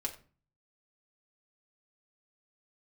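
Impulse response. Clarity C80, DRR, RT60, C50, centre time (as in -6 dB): 16.0 dB, 0.0 dB, 0.40 s, 12.5 dB, 10 ms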